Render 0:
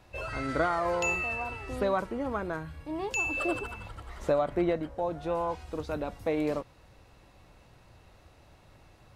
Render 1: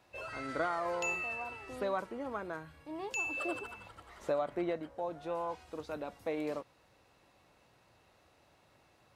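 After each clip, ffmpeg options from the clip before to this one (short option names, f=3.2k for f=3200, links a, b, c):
-af "highpass=f=270:p=1,volume=-5.5dB"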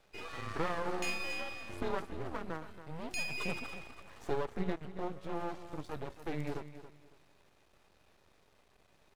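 -af "afreqshift=-160,aeval=exprs='max(val(0),0)':c=same,aecho=1:1:278|556|834:0.237|0.0593|0.0148,volume=2.5dB"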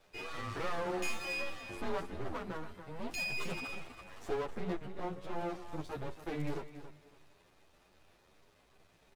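-filter_complex "[0:a]asoftclip=type=tanh:threshold=-26.5dB,asplit=2[a][b];[b]adelay=9.9,afreqshift=2.6[c];[a][c]amix=inputs=2:normalize=1,volume=4.5dB"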